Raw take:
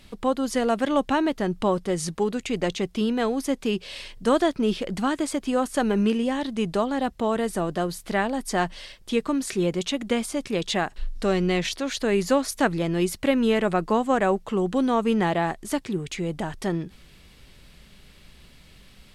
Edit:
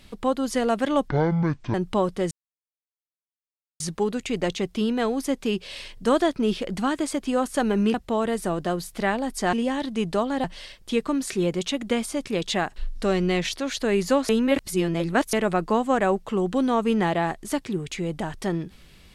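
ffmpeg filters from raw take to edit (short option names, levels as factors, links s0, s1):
-filter_complex "[0:a]asplit=9[s0][s1][s2][s3][s4][s5][s6][s7][s8];[s0]atrim=end=1.084[s9];[s1]atrim=start=1.08:end=1.43,asetpts=PTS-STARTPTS,asetrate=23373,aresample=44100[s10];[s2]atrim=start=1.426:end=2,asetpts=PTS-STARTPTS,afade=t=out:st=0.57:d=0.004:c=hsin,apad=pad_dur=1.49[s11];[s3]atrim=start=2:end=6.142,asetpts=PTS-STARTPTS,afade=t=in:d=0.004:c=hsin[s12];[s4]atrim=start=7.048:end=8.642[s13];[s5]atrim=start=6.138:end=7.052[s14];[s6]atrim=start=8.638:end=12.492[s15];[s7]atrim=start=12.488:end=13.532,asetpts=PTS-STARTPTS,areverse[s16];[s8]atrim=start=13.528[s17];[s9][s10]acrossfade=d=0.004:c1=hsin:c2=hsin[s18];[s11][s12]concat=n=2:v=0:a=1[s19];[s18][s19]acrossfade=d=0.004:c1=hsin:c2=hsin[s20];[s20][s13]acrossfade=d=0.004:c1=hsin:c2=hsin[s21];[s21][s14]acrossfade=d=0.004:c1=hsin:c2=hsin[s22];[s22][s15]acrossfade=d=0.004:c1=hsin:c2=hsin[s23];[s23][s16]acrossfade=d=0.004:c1=hsin:c2=hsin[s24];[s24][s17]acrossfade=d=0.004:c1=hsin:c2=hsin"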